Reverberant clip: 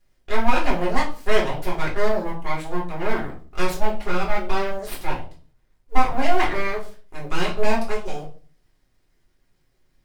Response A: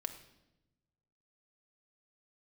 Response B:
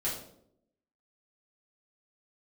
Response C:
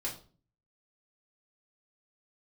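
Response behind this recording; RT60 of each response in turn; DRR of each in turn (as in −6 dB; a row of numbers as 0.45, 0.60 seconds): C; 0.95, 0.70, 0.40 seconds; 5.5, −8.0, −4.0 decibels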